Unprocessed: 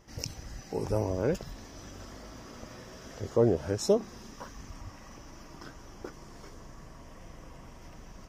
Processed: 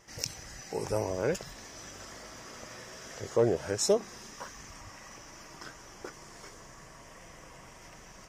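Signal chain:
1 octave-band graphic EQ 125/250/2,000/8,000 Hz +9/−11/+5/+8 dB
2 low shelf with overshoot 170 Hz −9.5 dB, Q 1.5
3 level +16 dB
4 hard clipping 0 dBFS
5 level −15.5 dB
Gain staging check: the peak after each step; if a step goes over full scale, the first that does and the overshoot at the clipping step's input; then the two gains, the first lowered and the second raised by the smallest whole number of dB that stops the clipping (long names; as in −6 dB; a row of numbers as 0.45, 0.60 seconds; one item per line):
−8.5, −8.5, +7.5, 0.0, −15.5 dBFS
step 3, 7.5 dB
step 3 +8 dB, step 5 −7.5 dB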